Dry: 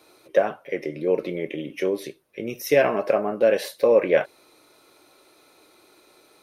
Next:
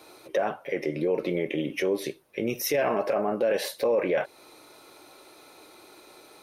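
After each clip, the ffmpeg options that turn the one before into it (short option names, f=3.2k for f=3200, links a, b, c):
-filter_complex "[0:a]equalizer=f=840:t=o:w=0.44:g=3.5,asplit=2[a][b];[b]acompressor=threshold=-28dB:ratio=6,volume=3dB[c];[a][c]amix=inputs=2:normalize=0,alimiter=limit=-13.5dB:level=0:latency=1:release=12,volume=-3.5dB"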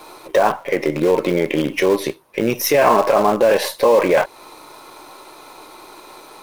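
-filter_complex "[0:a]equalizer=f=1k:w=2.7:g=10.5,asplit=2[a][b];[b]acrusher=bits=5:dc=4:mix=0:aa=0.000001,volume=-9.5dB[c];[a][c]amix=inputs=2:normalize=0,volume=7dB"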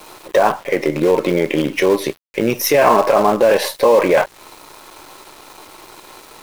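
-af "aeval=exprs='val(0)*gte(abs(val(0)),0.0106)':c=same,volume=1.5dB"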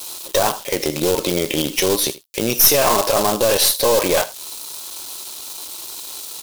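-af "aecho=1:1:80:0.119,aexciter=amount=3.8:drive=8.6:freq=3k,aeval=exprs='(tanh(1.41*val(0)+0.5)-tanh(0.5))/1.41':c=same,volume=-2.5dB"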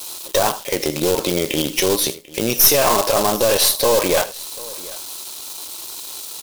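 -af "aecho=1:1:742:0.0891"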